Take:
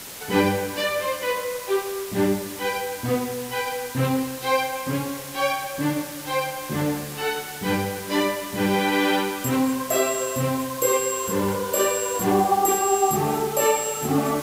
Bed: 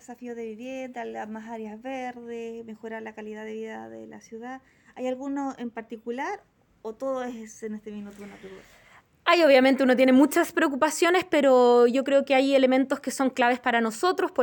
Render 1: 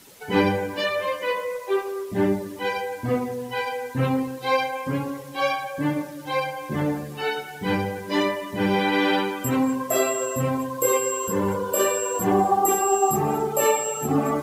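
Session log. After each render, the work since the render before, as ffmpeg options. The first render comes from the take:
-af "afftdn=nr=13:nf=-35"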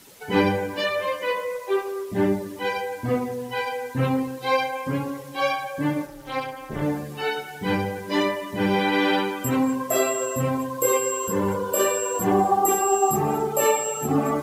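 -filter_complex "[0:a]asplit=3[s0][s1][s2];[s0]afade=t=out:st=6.05:d=0.02[s3];[s1]tremolo=f=260:d=0.974,afade=t=in:st=6.05:d=0.02,afade=t=out:st=6.81:d=0.02[s4];[s2]afade=t=in:st=6.81:d=0.02[s5];[s3][s4][s5]amix=inputs=3:normalize=0"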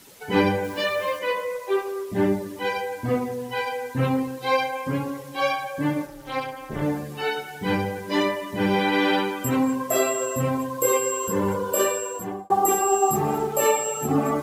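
-filter_complex "[0:a]asettb=1/sr,asplit=3[s0][s1][s2];[s0]atrim=end=0.644[s3];[s1]atrim=start=0.64:end=1.19,asetpts=PTS-STARTPTS,afade=t=in:d=0.004:c=qsin,afade=t=out:st=0.546:d=0.004:c=qsin,acrusher=bits=8:dc=4:mix=0:aa=0.000001[s4];[s2]atrim=start=1.186[s5];[s3][s4]acrossfade=d=0.004:c1=hsin:c2=qsin[s6];[s6][s5]acrossfade=d=0.004:c1=qsin:c2=hsin,asettb=1/sr,asplit=3[s7][s8][s9];[s7]atrim=end=13.134[s10];[s8]atrim=start=13.13:end=13.66,asetpts=PTS-STARTPTS,afade=t=in:d=0.004:c=qsin,afade=t=out:st=0.526:d=0.004:c=qsin,aeval=exprs='sgn(val(0))*max(abs(val(0))-0.00596,0)':c=same[s11];[s9]atrim=start=13.656[s12];[s10][s11]acrossfade=d=0.004:c1=hsin:c2=qsin[s13];[s13][s12]acrossfade=d=0.004:c1=qsin:c2=hsin,asplit=2[s14][s15];[s14]atrim=end=12.5,asetpts=PTS-STARTPTS,afade=t=out:st=11.8:d=0.7[s16];[s15]atrim=start=12.5,asetpts=PTS-STARTPTS,afade=t=in:d=0.004:c=hsin[s17];[s16][s17]concat=n=2:v=0:a=1"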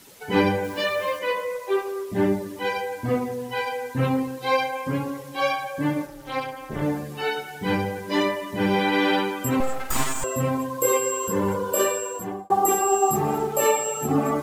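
-filter_complex "[0:a]asettb=1/sr,asplit=3[s0][s1][s2];[s0]atrim=end=9.604[s3];[s1]atrim=start=9.6:end=10.24,asetpts=PTS-STARTPTS,afade=t=in:d=0.004:c=qsin,afade=t=out:st=0.636:d=0.004:c=qsin,aeval=exprs='abs(val(0))':c=same[s4];[s2]atrim=start=10.236[s5];[s3][s4]acrossfade=d=0.004:c1=hsin:c2=qsin[s6];[s6][s5]acrossfade=d=0.004:c1=qsin:c2=hsin"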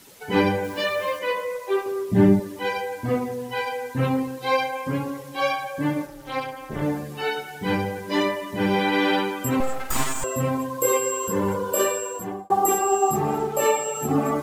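-filter_complex "[0:a]asettb=1/sr,asplit=3[s0][s1][s2];[s0]atrim=end=1.864[s3];[s1]atrim=start=1.86:end=2.4,asetpts=PTS-STARTPTS,afade=t=in:d=0.004:c=qsin,afade=t=out:st=0.536:d=0.004:c=qsin,equalizer=f=140:t=o:w=1.6:g=13[s4];[s2]atrim=start=2.396[s5];[s3][s4]acrossfade=d=0.004:c1=hsin:c2=qsin[s6];[s6][s5]acrossfade=d=0.004:c1=qsin:c2=hsin,asettb=1/sr,asplit=3[s7][s8][s9];[s7]atrim=end=12.784[s10];[s8]atrim=start=12.78:end=13.95,asetpts=PTS-STARTPTS,afade=t=in:d=0.004:c=qsin,afade=t=out:st=1.166:d=0.004:c=qsin,highshelf=f=8100:g=-5.5[s11];[s9]atrim=start=13.946[s12];[s10][s11]acrossfade=d=0.004:c1=hsin:c2=qsin[s13];[s13][s12]acrossfade=d=0.004:c1=qsin:c2=hsin"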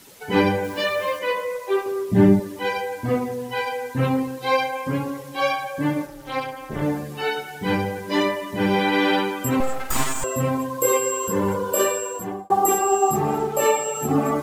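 -af "volume=1.19"

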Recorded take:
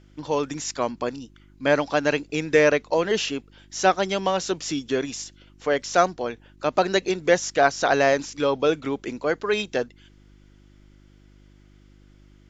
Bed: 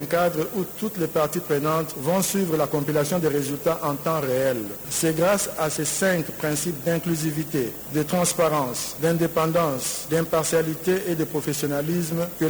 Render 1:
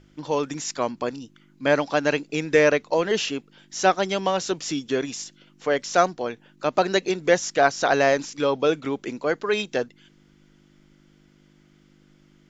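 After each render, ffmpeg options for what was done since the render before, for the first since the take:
-af "bandreject=f=50:t=h:w=4,bandreject=f=100:t=h:w=4"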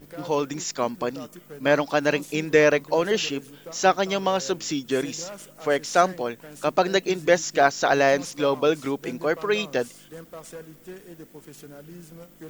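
-filter_complex "[1:a]volume=0.112[s0];[0:a][s0]amix=inputs=2:normalize=0"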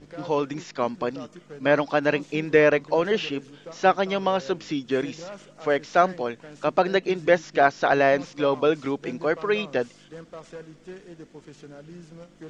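-filter_complex "[0:a]acrossover=split=3600[s0][s1];[s1]acompressor=threshold=0.00398:ratio=4:attack=1:release=60[s2];[s0][s2]amix=inputs=2:normalize=0,lowpass=f=6700:w=0.5412,lowpass=f=6700:w=1.3066"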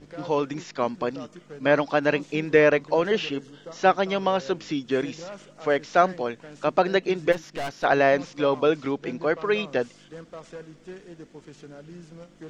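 -filter_complex "[0:a]asettb=1/sr,asplit=3[s0][s1][s2];[s0]atrim=end=3.334[s3];[s1]atrim=start=3.33:end=3.77,asetpts=PTS-STARTPTS,afade=t=in:d=0.004:c=qsin,afade=t=out:st=0.436:d=0.004:c=qsin,asuperstop=centerf=2400:order=20:qfactor=5.6[s4];[s2]atrim=start=3.766[s5];[s3][s4]acrossfade=d=0.004:c1=hsin:c2=qsin[s6];[s6][s5]acrossfade=d=0.004:c1=qsin:c2=hsin,asplit=3[s7][s8][s9];[s7]afade=t=out:st=7.31:d=0.02[s10];[s8]aeval=exprs='(tanh(25.1*val(0)+0.6)-tanh(0.6))/25.1':c=same,afade=t=in:st=7.31:d=0.02,afade=t=out:st=7.83:d=0.02[s11];[s9]afade=t=in:st=7.83:d=0.02[s12];[s10][s11][s12]amix=inputs=3:normalize=0,asettb=1/sr,asplit=3[s13][s14][s15];[s13]atrim=end=8.764[s16];[s14]atrim=start=8.76:end=9.44,asetpts=PTS-STARTPTS,afade=t=in:d=0.004:c=qsin,afade=t=out:st=0.676:d=0.004:c=qsin,lowpass=6300[s17];[s15]atrim=start=9.436[s18];[s16][s17]acrossfade=d=0.004:c1=hsin:c2=qsin[s19];[s19][s18]acrossfade=d=0.004:c1=qsin:c2=hsin"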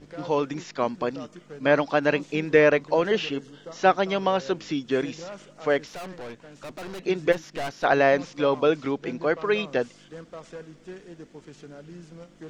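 -filter_complex "[0:a]asettb=1/sr,asplit=3[s0][s1][s2];[s0]atrim=end=5.874[s3];[s1]atrim=start=5.87:end=7,asetpts=PTS-STARTPTS,afade=t=in:d=0.004:c=qsin,afade=t=out:st=1.126:d=0.004:c=qsin,aeval=exprs='(tanh(56.2*val(0)+0.5)-tanh(0.5))/56.2':c=same[s4];[s2]atrim=start=6.996[s5];[s3][s4]acrossfade=d=0.004:c1=hsin:c2=qsin[s6];[s6][s5]acrossfade=d=0.004:c1=qsin:c2=hsin"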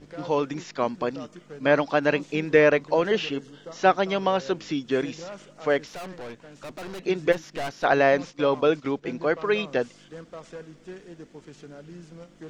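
-filter_complex "[0:a]asplit=3[s0][s1][s2];[s0]afade=t=out:st=8.3:d=0.02[s3];[s1]agate=range=0.355:threshold=0.0126:ratio=16:release=100:detection=peak,afade=t=in:st=8.3:d=0.02,afade=t=out:st=9.17:d=0.02[s4];[s2]afade=t=in:st=9.17:d=0.02[s5];[s3][s4][s5]amix=inputs=3:normalize=0"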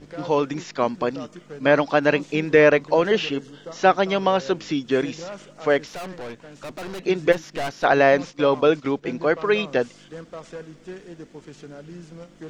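-af "volume=1.5,alimiter=limit=0.708:level=0:latency=1"

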